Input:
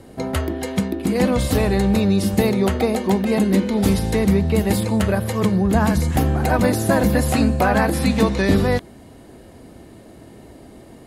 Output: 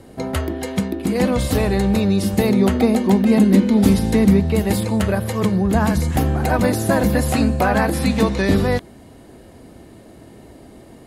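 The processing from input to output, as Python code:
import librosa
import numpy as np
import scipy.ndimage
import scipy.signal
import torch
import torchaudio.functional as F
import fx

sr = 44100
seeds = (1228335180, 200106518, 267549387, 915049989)

y = fx.peak_eq(x, sr, hz=240.0, db=8.0, octaves=0.58, at=(2.49, 4.4))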